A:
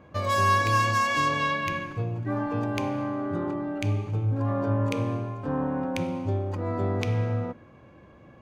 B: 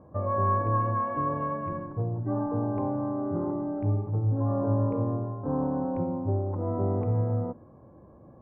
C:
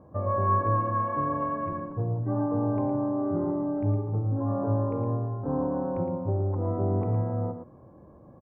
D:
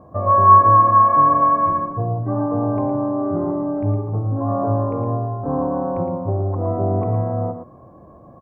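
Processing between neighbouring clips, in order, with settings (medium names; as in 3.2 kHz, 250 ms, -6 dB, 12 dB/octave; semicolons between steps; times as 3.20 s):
inverse Chebyshev low-pass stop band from 5.9 kHz, stop band 80 dB
delay 113 ms -8 dB
small resonant body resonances 690/1100 Hz, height 11 dB; trim +5.5 dB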